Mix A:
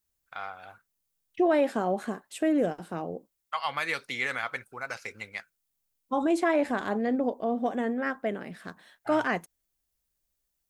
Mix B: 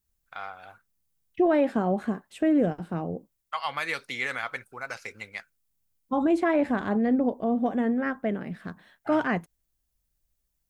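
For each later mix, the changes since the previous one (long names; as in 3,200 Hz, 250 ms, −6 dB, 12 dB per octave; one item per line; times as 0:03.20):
second voice: add bass and treble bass +10 dB, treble −9 dB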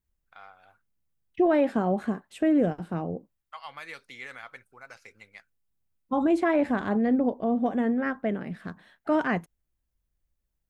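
first voice −11.0 dB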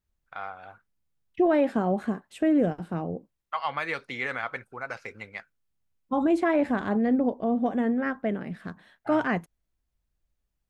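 first voice: remove first-order pre-emphasis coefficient 0.8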